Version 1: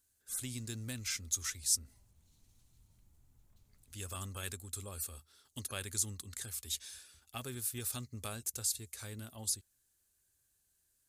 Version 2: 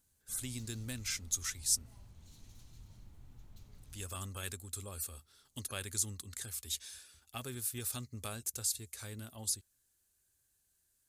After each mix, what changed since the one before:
background +12.0 dB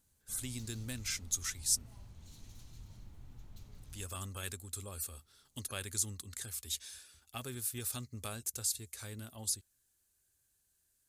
background +3.0 dB

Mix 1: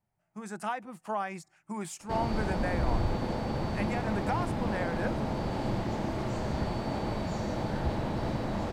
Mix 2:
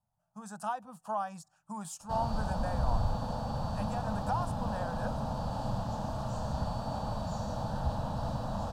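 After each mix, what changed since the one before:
master: add static phaser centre 880 Hz, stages 4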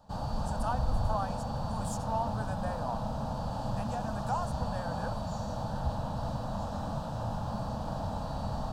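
background: entry -2.00 s

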